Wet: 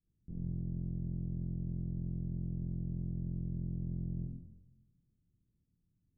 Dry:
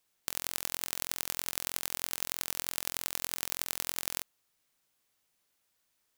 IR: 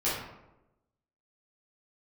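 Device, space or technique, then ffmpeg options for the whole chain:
club heard from the street: -filter_complex "[0:a]asettb=1/sr,asplit=3[link_01][link_02][link_03];[link_01]atrim=end=3.214[link_04];[link_02]atrim=start=3.21:end=3.65,asetpts=PTS-STARTPTS,afade=type=in:duration=0.004:curve=qsin,afade=type=out:start_time=0.436:duration=0.004:curve=qsin,bandreject=frequency=730:width=12[link_05];[link_03]atrim=start=3.646[link_06];[link_04][link_05]acrossfade=duration=0.004:curve1=hsin:curve2=qsin[link_07];[link_07][link_06]acrossfade=duration=0.004:curve1=qsin:curve2=hsin,alimiter=limit=-7dB:level=0:latency=1,lowpass=frequency=200:width=0.5412,lowpass=frequency=200:width=1.3066[link_08];[1:a]atrim=start_sample=2205[link_09];[link_08][link_09]afir=irnorm=-1:irlink=0,volume=9.5dB"

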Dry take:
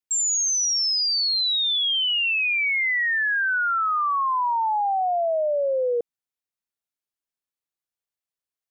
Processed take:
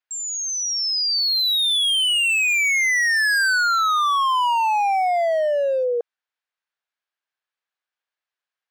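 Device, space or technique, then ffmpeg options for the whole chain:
megaphone: -af "highpass=680,lowpass=3500,equalizer=frequency=1600:width_type=o:width=0.24:gain=6,asoftclip=type=hard:threshold=-26dB,volume=8dB"

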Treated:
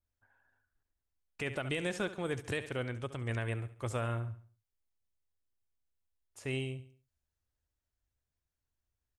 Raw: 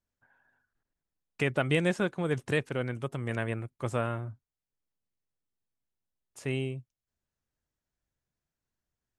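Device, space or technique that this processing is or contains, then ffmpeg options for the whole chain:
car stereo with a boomy subwoofer: -filter_complex "[0:a]asettb=1/sr,asplit=3[link_01][link_02][link_03];[link_01]atrim=end=2.844[link_04];[link_02]atrim=start=2.84:end=3.43,asetpts=PTS-STARTPTS,afade=type=in:duration=0.004:curve=qsin,afade=type=out:start_time=0.586:duration=0.004:curve=qsin,lowpass=8800[link_05];[link_03]atrim=start=3.426[link_06];[link_04][link_05]acrossfade=duration=0.004:curve1=hsin:curve2=qsin[link_07];[link_07][link_06]acrossfade=duration=0.004:curve1=qsin:curve2=hsin,lowshelf=frequency=120:width_type=q:width=1.5:gain=7,equalizer=frequency=150:width_type=o:width=0.53:gain=-4.5,aecho=1:1:69|138|207|276:0.178|0.0747|0.0314|0.0132,alimiter=limit=-21dB:level=0:latency=1:release=82,adynamicequalizer=threshold=0.00355:dfrequency=2400:dqfactor=0.7:tfrequency=2400:tqfactor=0.7:attack=5:release=100:ratio=0.375:range=2.5:mode=boostabove:tftype=highshelf,volume=-4dB"

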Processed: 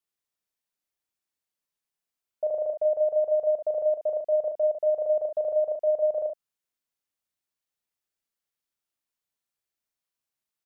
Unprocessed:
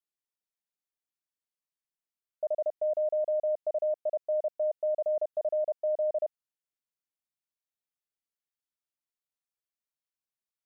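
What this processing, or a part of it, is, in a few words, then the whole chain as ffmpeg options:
slapback doubling: -filter_complex "[0:a]asplit=3[link_01][link_02][link_03];[link_02]adelay=36,volume=-6dB[link_04];[link_03]adelay=71,volume=-9.5dB[link_05];[link_01][link_04][link_05]amix=inputs=3:normalize=0,volume=3.5dB"

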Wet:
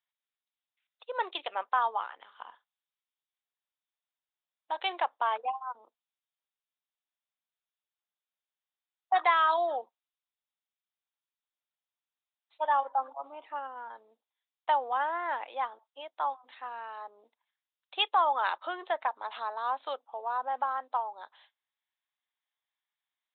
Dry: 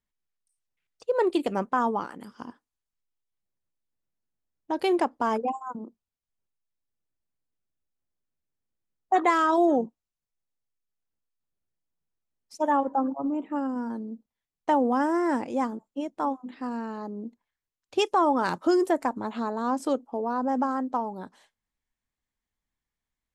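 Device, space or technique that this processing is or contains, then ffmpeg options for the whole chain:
musical greeting card: -filter_complex "[0:a]asettb=1/sr,asplit=3[link_01][link_02][link_03];[link_01]atrim=end=2.234[link_04];[link_02]atrim=start=2.23:end=4.77,asetpts=PTS-STARTPTS,afade=type=in:duration=0.004:curve=qsin,afade=type=out:start_time=2.536:duration=0.004:curve=qsin,asplit=2[link_05][link_06];[link_06]adelay=46,volume=-11dB[link_07];[link_05][link_07]amix=inputs=2:normalize=0,atrim=end_sample=112014[link_08];[link_03]atrim=start=4.766[link_09];[link_04][link_08]acrossfade=duration=0.004:curve1=hsin:curve2=qsin[link_10];[link_10][link_09]acrossfade=duration=0.004:curve1=qsin:curve2=hsin,aresample=8000,aresample=44100,highpass=frequency=700:width=0.5412,highpass=frequency=700:width=1.3066,equalizer=frequency=3900:width_type=o:width=0.57:gain=10,volume=-1dB"

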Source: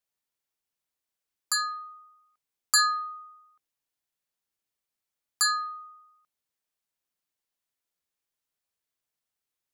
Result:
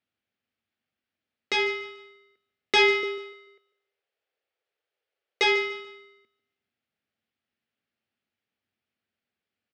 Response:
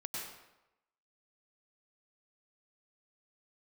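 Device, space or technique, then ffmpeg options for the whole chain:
ring modulator pedal into a guitar cabinet: -filter_complex "[0:a]aeval=exprs='val(0)*sgn(sin(2*PI*840*n/s))':channel_layout=same,highpass=76,equalizer=frequency=95:width_type=q:width=4:gain=8,equalizer=frequency=230:width_type=q:width=4:gain=9,equalizer=frequency=1000:width_type=q:width=4:gain=-10,equalizer=frequency=3800:width_type=q:width=4:gain=-4,lowpass=frequency=3800:width=0.5412,lowpass=frequency=3800:width=1.3066,asettb=1/sr,asplit=3[link_01][link_02][link_03];[link_01]atrim=end=3.034[link_04];[link_02]atrim=start=3.03:end=5.44,asetpts=PTS-STARTPTS,afade=type=in:duration=0.004:curve=qsin,afade=type=out:start_time=2.406:duration=0.004:curve=qsin,lowshelf=frequency=320:width_type=q:width=3:gain=-12[link_05];[link_03]atrim=start=5.436[link_06];[link_04][link_05]acrossfade=duration=0.004:curve1=hsin:curve2=qsin[link_07];[link_07][link_06]acrossfade=duration=0.004:curve1=qsin:curve2=hsin,aecho=1:1:146|292|438:0.168|0.052|0.0161,volume=6.5dB"

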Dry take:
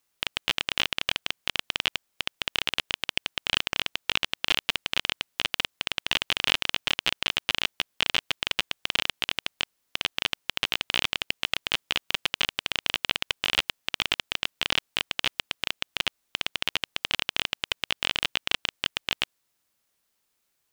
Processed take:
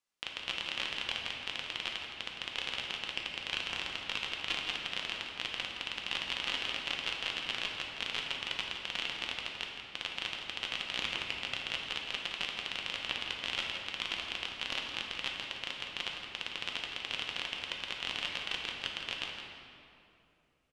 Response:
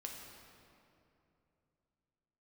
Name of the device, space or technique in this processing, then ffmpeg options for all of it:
cave: -filter_complex "[0:a]lowpass=7800,lowshelf=frequency=220:gain=-3,aecho=1:1:166:0.316[link_01];[1:a]atrim=start_sample=2205[link_02];[link_01][link_02]afir=irnorm=-1:irlink=0,volume=-5.5dB"

